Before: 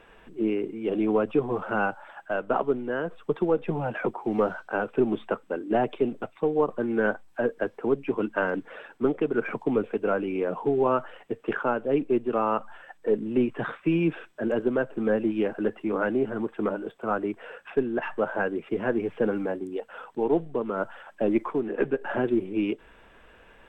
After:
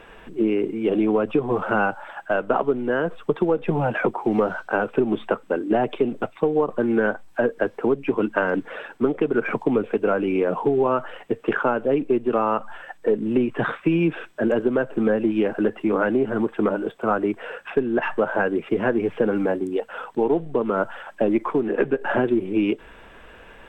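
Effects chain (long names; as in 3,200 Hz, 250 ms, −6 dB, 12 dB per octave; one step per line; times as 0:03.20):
downward compressor, threshold −24 dBFS, peak gain reduction 7.5 dB
level +8 dB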